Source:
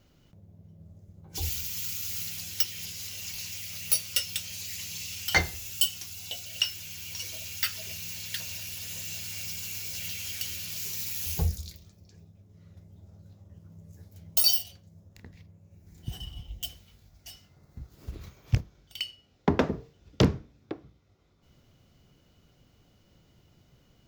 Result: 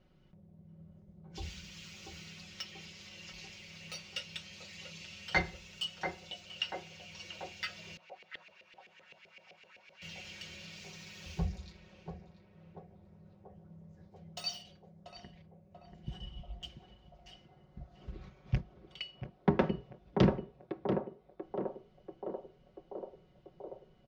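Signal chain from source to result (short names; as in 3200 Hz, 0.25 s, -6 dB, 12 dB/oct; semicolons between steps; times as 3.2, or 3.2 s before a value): air absorption 150 m; comb 5.4 ms, depth 63%; narrowing echo 0.687 s, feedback 75%, band-pass 570 Hz, level -3 dB; 7.97–10.02 LFO band-pass saw up 7.8 Hz 460–2500 Hz; high shelf 4900 Hz -7 dB; gain -4.5 dB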